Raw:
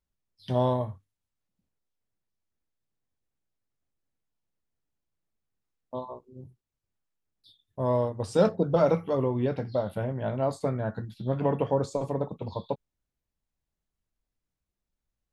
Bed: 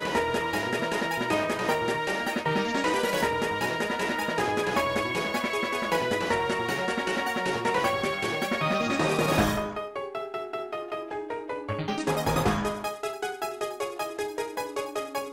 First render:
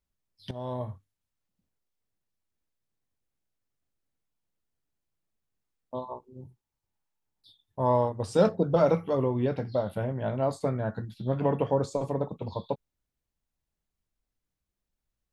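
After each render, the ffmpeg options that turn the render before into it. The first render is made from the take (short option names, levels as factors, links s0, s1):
-filter_complex "[0:a]asettb=1/sr,asplit=3[s0][s1][s2];[s0]atrim=end=6.114[s3];[s1]atrim=start=6.11:end=8.12,asetpts=PTS-STARTPTS,afade=t=in:d=0.004:c=qsin,afade=t=out:st=2.006:d=0.004:c=qsin,equalizer=f=880:t=o:w=0.32:g=10[s4];[s2]atrim=start=8.116[s5];[s3][s4]acrossfade=d=0.004:c1=hsin:c2=qsin[s6];[s6][s5]acrossfade=d=0.004:c1=qsin:c2=hsin,asplit=2[s7][s8];[s7]atrim=end=0.51,asetpts=PTS-STARTPTS,afade=t=out:st=0.506:d=0.004:c=hsin:silence=0.16788[s9];[s8]atrim=start=0.51,asetpts=PTS-STARTPTS,afade=t=in:d=0.4:c=qua:silence=0.16788[s10];[s9][s10]concat=n=2:v=0:a=1"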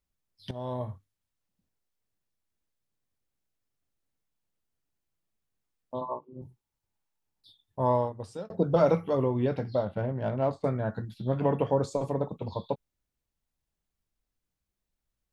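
-filter_complex "[0:a]asettb=1/sr,asplit=3[s0][s1][s2];[s0]atrim=end=6.014[s3];[s1]atrim=start=6.01:end=6.42,asetpts=PTS-STARTPTS,afade=t=in:d=0.004:c=qsin,afade=t=out:st=0.406:d=0.004:c=qsin,highpass=130,equalizer=f=150:t=q:w=4:g=9,equalizer=f=300:t=q:w=4:g=7,equalizer=f=590:t=q:w=4:g=6,equalizer=f=1100:t=q:w=4:g=9,equalizer=f=1800:t=q:w=4:g=-8,lowpass=f=3200:w=0.5412,lowpass=f=3200:w=1.3066[s4];[s2]atrim=start=6.416[s5];[s3][s4]acrossfade=d=0.004:c1=hsin:c2=qsin[s6];[s6][s5]acrossfade=d=0.004:c1=qsin:c2=hsin,asettb=1/sr,asplit=3[s7][s8][s9];[s7]atrim=end=9.854[s10];[s8]atrim=start=9.85:end=10.64,asetpts=PTS-STARTPTS,afade=t=in:d=0.004:c=qsin,afade=t=out:st=0.786:d=0.004:c=qsin,adynamicsmooth=sensitivity=5:basefreq=2400[s11];[s9]atrim=start=10.636[s12];[s10][s11]acrossfade=d=0.004:c1=hsin:c2=qsin[s13];[s13][s12]acrossfade=d=0.004:c1=qsin:c2=hsin,asplit=2[s14][s15];[s14]atrim=end=8.5,asetpts=PTS-STARTPTS,afade=t=out:st=7.84:d=0.66[s16];[s15]atrim=start=8.5,asetpts=PTS-STARTPTS,afade=t=in:d=0.004:c=hsin[s17];[s16][s17]concat=n=2:v=0:a=1"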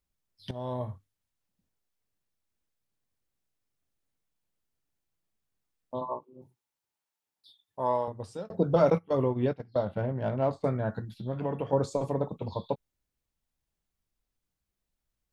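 -filter_complex "[0:a]asettb=1/sr,asplit=3[s0][s1][s2];[s0]atrim=end=6.234[s3];[s1]atrim=start=6.23:end=8.08,asetpts=PTS-STARTPTS,afade=t=in:d=0.004:c=qsin,afade=t=out:st=1.846:d=0.004:c=qsin,highpass=f=530:p=1[s4];[s2]atrim=start=8.076[s5];[s3][s4]acrossfade=d=0.004:c1=hsin:c2=qsin[s6];[s6][s5]acrossfade=d=0.004:c1=qsin:c2=hsin,asettb=1/sr,asplit=3[s7][s8][s9];[s7]atrim=end=8.904[s10];[s8]atrim=start=8.9:end=9.79,asetpts=PTS-STARTPTS,afade=t=in:d=0.004:c=qsin,afade=t=out:st=0.886:d=0.004:c=qsin,agate=range=0.126:threshold=0.0355:ratio=16:release=100:detection=peak[s11];[s9]atrim=start=9.786[s12];[s10][s11]acrossfade=d=0.004:c1=hsin:c2=qsin[s13];[s13][s12]acrossfade=d=0.004:c1=qsin:c2=hsin,asettb=1/sr,asplit=3[s14][s15][s16];[s14]atrim=end=10.994[s17];[s15]atrim=start=10.99:end=11.73,asetpts=PTS-STARTPTS,afade=t=in:d=0.004:c=qsin,afade=t=out:st=0.736:d=0.004:c=qsin,acompressor=threshold=0.0141:ratio=1.5:attack=3.2:release=140:knee=1:detection=peak[s18];[s16]atrim=start=11.726[s19];[s17][s18]acrossfade=d=0.004:c1=hsin:c2=qsin[s20];[s20][s19]acrossfade=d=0.004:c1=qsin:c2=hsin"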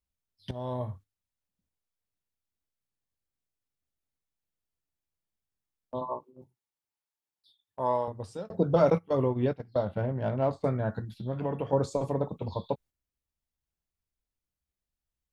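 -af "agate=range=0.447:threshold=0.00316:ratio=16:detection=peak,equalizer=f=68:t=o:w=0.77:g=5.5"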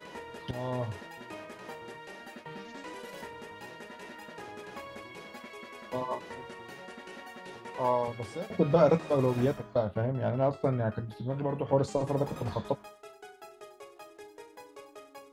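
-filter_complex "[1:a]volume=0.133[s0];[0:a][s0]amix=inputs=2:normalize=0"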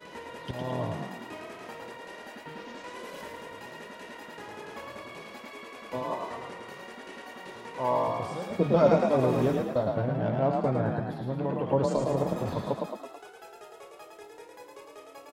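-filter_complex "[0:a]asplit=8[s0][s1][s2][s3][s4][s5][s6][s7];[s1]adelay=109,afreqshift=40,volume=0.668[s8];[s2]adelay=218,afreqshift=80,volume=0.359[s9];[s3]adelay=327,afreqshift=120,volume=0.195[s10];[s4]adelay=436,afreqshift=160,volume=0.105[s11];[s5]adelay=545,afreqshift=200,volume=0.0569[s12];[s6]adelay=654,afreqshift=240,volume=0.0305[s13];[s7]adelay=763,afreqshift=280,volume=0.0166[s14];[s0][s8][s9][s10][s11][s12][s13][s14]amix=inputs=8:normalize=0"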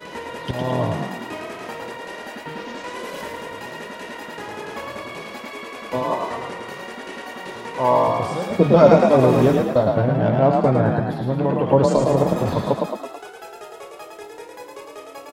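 -af "volume=3.16,alimiter=limit=0.891:level=0:latency=1"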